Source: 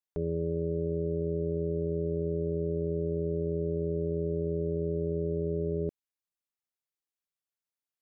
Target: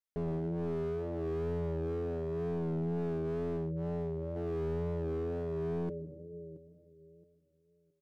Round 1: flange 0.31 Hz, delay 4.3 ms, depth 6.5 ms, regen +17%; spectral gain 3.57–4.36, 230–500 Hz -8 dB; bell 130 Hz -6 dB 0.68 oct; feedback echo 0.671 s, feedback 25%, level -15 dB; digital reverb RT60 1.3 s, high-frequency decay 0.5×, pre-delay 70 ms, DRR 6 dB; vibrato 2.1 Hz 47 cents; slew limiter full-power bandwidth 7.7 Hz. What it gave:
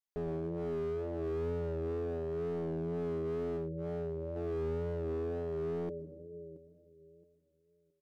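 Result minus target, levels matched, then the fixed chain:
125 Hz band -2.5 dB
flange 0.31 Hz, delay 4.3 ms, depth 6.5 ms, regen +17%; spectral gain 3.57–4.36, 230–500 Hz -8 dB; bell 130 Hz +4.5 dB 0.68 oct; feedback echo 0.671 s, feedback 25%, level -15 dB; digital reverb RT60 1.3 s, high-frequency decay 0.5×, pre-delay 70 ms, DRR 6 dB; vibrato 2.1 Hz 47 cents; slew limiter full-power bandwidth 7.7 Hz

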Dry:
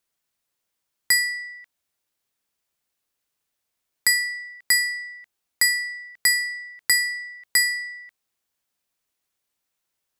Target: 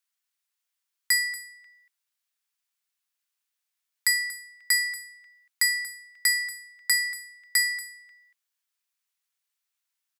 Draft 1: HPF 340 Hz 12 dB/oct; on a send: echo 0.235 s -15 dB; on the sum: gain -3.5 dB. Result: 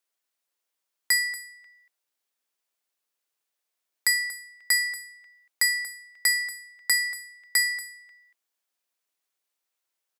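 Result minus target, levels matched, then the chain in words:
250 Hz band +19.5 dB
HPF 1200 Hz 12 dB/oct; on a send: echo 0.235 s -15 dB; on the sum: gain -3.5 dB

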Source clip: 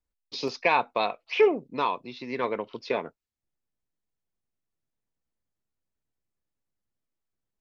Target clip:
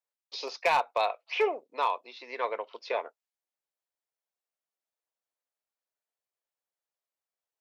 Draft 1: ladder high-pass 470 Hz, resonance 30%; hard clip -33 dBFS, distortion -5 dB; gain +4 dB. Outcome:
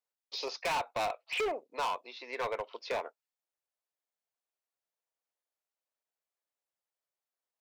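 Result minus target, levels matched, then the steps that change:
hard clip: distortion +12 dB
change: hard clip -21.5 dBFS, distortion -18 dB

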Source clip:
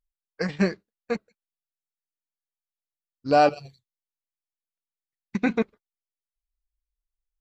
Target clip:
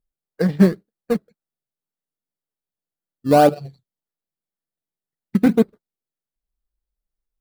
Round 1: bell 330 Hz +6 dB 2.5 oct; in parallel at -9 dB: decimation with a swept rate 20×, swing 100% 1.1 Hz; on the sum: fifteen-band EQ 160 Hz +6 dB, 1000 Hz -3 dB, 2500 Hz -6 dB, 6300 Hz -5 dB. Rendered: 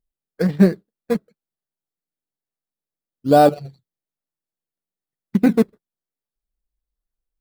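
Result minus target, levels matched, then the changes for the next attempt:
decimation with a swept rate: distortion -6 dB
change: decimation with a swept rate 20×, swing 100% 1.9 Hz

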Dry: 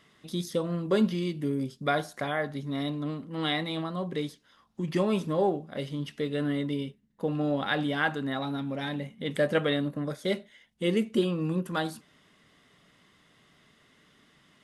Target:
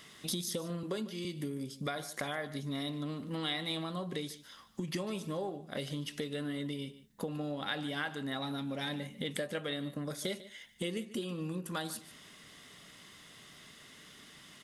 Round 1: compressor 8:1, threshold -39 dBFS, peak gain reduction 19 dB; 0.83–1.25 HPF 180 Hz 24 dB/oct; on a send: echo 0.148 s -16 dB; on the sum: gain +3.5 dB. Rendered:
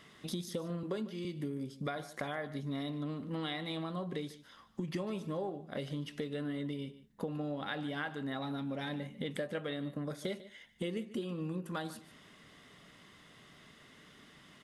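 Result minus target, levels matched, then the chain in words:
8000 Hz band -9.0 dB
compressor 8:1, threshold -39 dBFS, peak gain reduction 19 dB; high shelf 3400 Hz +12 dB; 0.83–1.25 HPF 180 Hz 24 dB/oct; on a send: echo 0.148 s -16 dB; on the sum: gain +3.5 dB

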